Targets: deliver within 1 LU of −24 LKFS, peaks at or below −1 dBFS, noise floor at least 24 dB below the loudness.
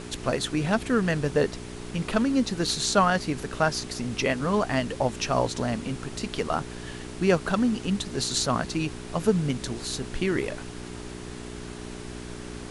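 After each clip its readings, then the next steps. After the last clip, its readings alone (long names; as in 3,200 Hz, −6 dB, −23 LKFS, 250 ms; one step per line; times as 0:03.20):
mains hum 60 Hz; hum harmonics up to 420 Hz; level of the hum −38 dBFS; background noise floor −39 dBFS; target noise floor −51 dBFS; integrated loudness −26.5 LKFS; sample peak −7.0 dBFS; target loudness −24.0 LKFS
→ hum removal 60 Hz, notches 7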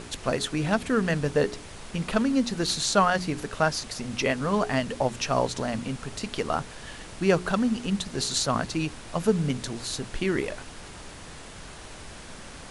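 mains hum none found; background noise floor −43 dBFS; target noise floor −51 dBFS
→ noise reduction from a noise print 8 dB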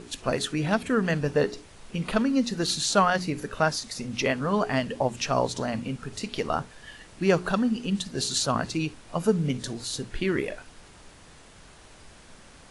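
background noise floor −51 dBFS; integrated loudness −27.0 LKFS; sample peak −7.0 dBFS; target loudness −24.0 LKFS
→ level +3 dB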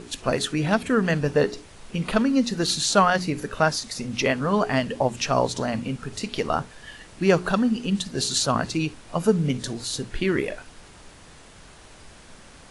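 integrated loudness −24.0 LKFS; sample peak −4.0 dBFS; background noise floor −48 dBFS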